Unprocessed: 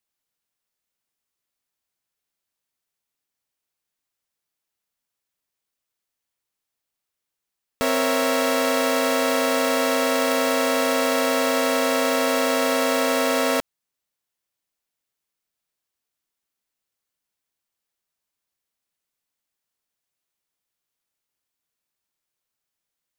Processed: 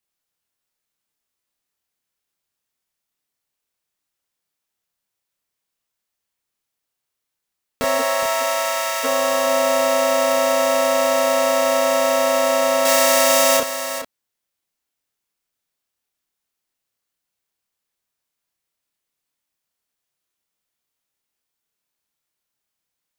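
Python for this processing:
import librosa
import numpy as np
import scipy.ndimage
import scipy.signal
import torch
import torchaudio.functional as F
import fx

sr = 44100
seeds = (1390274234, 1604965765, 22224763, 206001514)

y = fx.highpass(x, sr, hz=fx.line((7.98, 440.0), (9.03, 1300.0)), slope=12, at=(7.98, 9.03), fade=0.02)
y = fx.high_shelf(y, sr, hz=2500.0, db=10.5, at=(12.85, 13.57))
y = fx.doubler(y, sr, ms=29.0, db=-2)
y = y + 10.0 ** (-10.0 / 20.0) * np.pad(y, (int(417 * sr / 1000.0), 0))[:len(y)]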